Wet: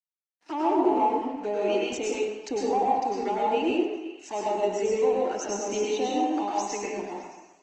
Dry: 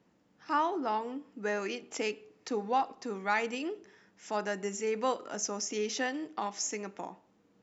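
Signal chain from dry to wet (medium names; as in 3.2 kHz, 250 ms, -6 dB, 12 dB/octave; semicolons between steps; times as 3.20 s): band-stop 3.3 kHz, Q 10; low-pass that closes with the level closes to 860 Hz, closed at -26 dBFS; resonant high shelf 2.7 kHz +6.5 dB, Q 1.5; in parallel at -2.5 dB: peak limiter -26.5 dBFS, peak gain reduction 8 dB; on the sum: one-sided clip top -23.5 dBFS; touch-sensitive flanger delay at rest 4.9 ms, full sweep at -29 dBFS; crossover distortion -52 dBFS; cabinet simulation 310–6600 Hz, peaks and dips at 340 Hz +7 dB, 500 Hz -4 dB, 810 Hz +4 dB, 1.2 kHz -8 dB, 3.5 kHz -8 dB, 5.2 kHz -9 dB; on a send: repeats whose band climbs or falls 123 ms, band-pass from 850 Hz, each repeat 0.7 oct, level -9 dB; on the sum: plate-style reverb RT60 0.9 s, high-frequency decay 0.75×, pre-delay 90 ms, DRR -4 dB; trim +2.5 dB; Opus 20 kbps 48 kHz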